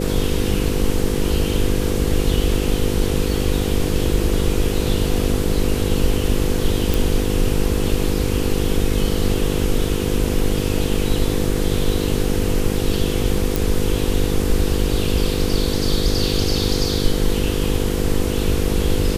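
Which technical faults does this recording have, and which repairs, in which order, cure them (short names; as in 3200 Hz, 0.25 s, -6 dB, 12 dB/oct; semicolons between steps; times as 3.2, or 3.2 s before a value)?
buzz 50 Hz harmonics 10 -23 dBFS
6.94 pop
13.56 pop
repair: de-click; de-hum 50 Hz, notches 10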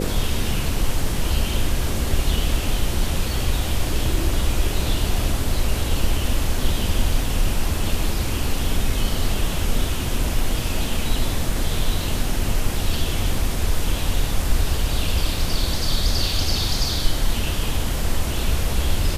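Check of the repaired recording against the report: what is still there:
none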